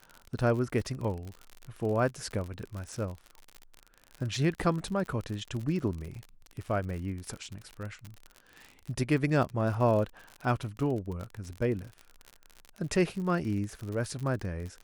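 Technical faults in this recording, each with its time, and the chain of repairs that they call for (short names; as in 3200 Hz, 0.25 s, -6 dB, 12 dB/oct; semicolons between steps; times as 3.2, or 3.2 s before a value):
crackle 53/s -35 dBFS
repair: de-click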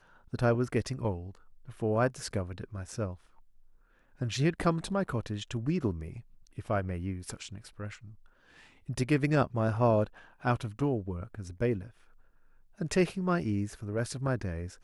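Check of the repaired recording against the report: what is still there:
none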